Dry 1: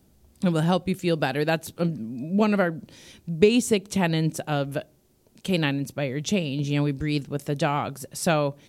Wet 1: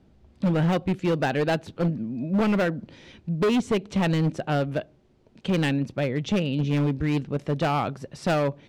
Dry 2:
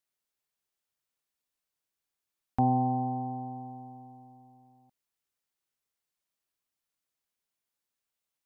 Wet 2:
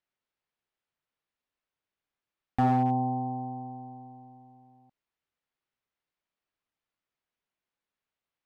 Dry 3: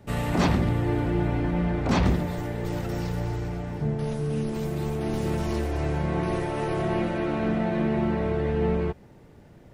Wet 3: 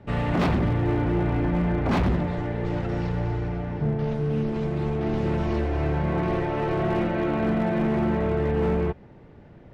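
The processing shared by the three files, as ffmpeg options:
-af "lowpass=3k,volume=21dB,asoftclip=hard,volume=-21dB,volume=2.5dB"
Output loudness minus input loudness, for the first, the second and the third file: -0.5, +2.0, +1.5 LU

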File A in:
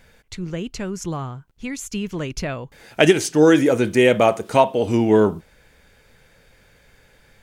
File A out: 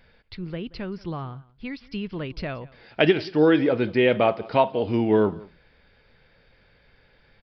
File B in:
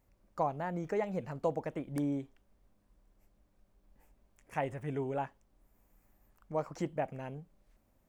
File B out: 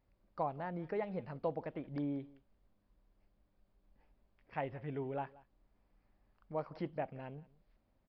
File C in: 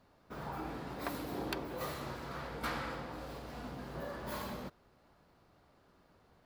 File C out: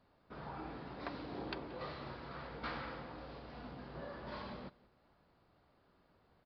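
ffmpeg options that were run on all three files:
-filter_complex "[0:a]asplit=2[a][b];[b]aecho=0:1:179:0.0794[c];[a][c]amix=inputs=2:normalize=0,aresample=11025,aresample=44100,volume=-4.5dB"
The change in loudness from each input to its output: -4.5, -4.5, -4.5 LU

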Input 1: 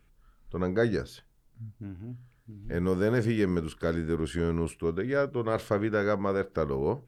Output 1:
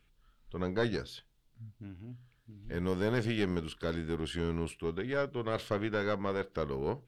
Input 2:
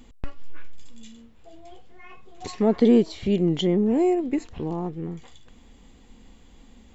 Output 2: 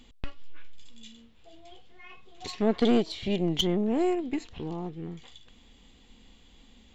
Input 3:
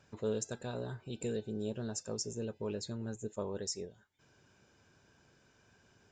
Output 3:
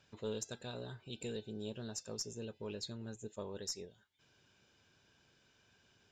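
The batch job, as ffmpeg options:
-af "equalizer=f=3.4k:w=1.1:g=10,aeval=exprs='0.422*(cos(1*acos(clip(val(0)/0.422,-1,1)))-cos(1*PI/2))+0.0668*(cos(4*acos(clip(val(0)/0.422,-1,1)))-cos(4*PI/2))+0.00841*(cos(6*acos(clip(val(0)/0.422,-1,1)))-cos(6*PI/2))':c=same,volume=-6dB"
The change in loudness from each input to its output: -5.5, -5.5, -4.5 LU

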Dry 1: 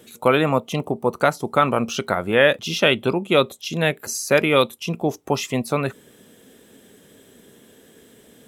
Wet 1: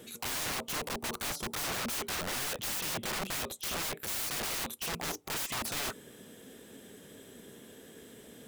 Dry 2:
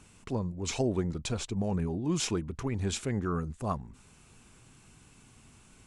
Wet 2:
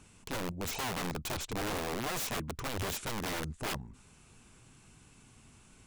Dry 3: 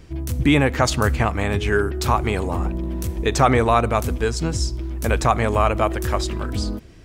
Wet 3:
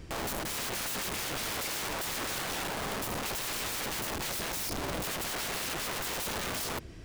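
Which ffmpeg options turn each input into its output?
-af "aeval=exprs='(tanh(5.01*val(0)+0.25)-tanh(0.25))/5.01':c=same,aeval=exprs='(mod(28.2*val(0)+1,2)-1)/28.2':c=same,volume=-1dB"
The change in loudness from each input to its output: -13.5, -3.5, -12.0 LU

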